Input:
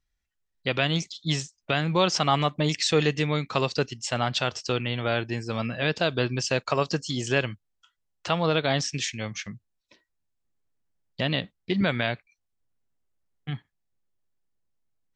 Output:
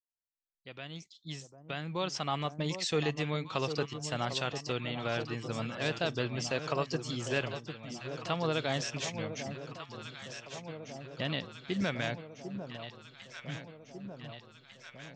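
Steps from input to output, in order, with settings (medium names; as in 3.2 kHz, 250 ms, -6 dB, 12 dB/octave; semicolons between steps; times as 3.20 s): fade-in on the opening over 3.20 s; echo whose repeats swap between lows and highs 749 ms, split 990 Hz, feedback 79%, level -8 dB; trim -8 dB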